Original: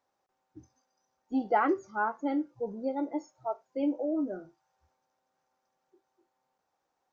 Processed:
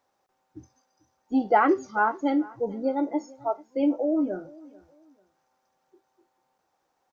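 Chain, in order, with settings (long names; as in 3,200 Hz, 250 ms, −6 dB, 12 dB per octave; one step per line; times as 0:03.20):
0:01.71–0:02.30: parametric band 4,000 Hz +7.5 dB 1.4 octaves
repeating echo 442 ms, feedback 29%, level −22.5 dB
level +6 dB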